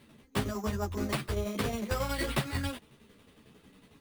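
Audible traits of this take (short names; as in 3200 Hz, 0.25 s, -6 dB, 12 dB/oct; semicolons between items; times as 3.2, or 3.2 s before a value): tremolo saw down 11 Hz, depth 60%; aliases and images of a low sample rate 6400 Hz, jitter 0%; a shimmering, thickened sound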